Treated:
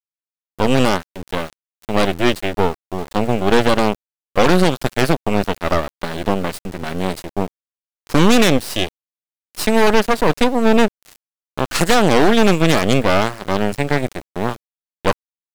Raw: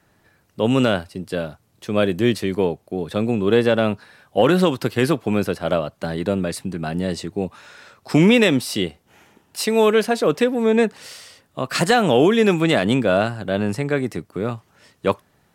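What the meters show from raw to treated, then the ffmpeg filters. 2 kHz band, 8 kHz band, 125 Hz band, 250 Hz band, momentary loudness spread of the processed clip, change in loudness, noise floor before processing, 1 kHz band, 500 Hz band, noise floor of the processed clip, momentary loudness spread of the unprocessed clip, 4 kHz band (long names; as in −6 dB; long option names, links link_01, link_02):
+3.5 dB, +5.5 dB, +2.0 dB, +1.5 dB, 13 LU, +2.0 dB, −62 dBFS, +6.0 dB, +1.0 dB, below −85 dBFS, 13 LU, +4.0 dB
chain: -af "aeval=exprs='0.631*(cos(1*acos(clip(val(0)/0.631,-1,1)))-cos(1*PI/2))+0.2*(cos(6*acos(clip(val(0)/0.631,-1,1)))-cos(6*PI/2))':channel_layout=same,aeval=exprs='val(0)*gte(abs(val(0)),0.0355)':channel_layout=same"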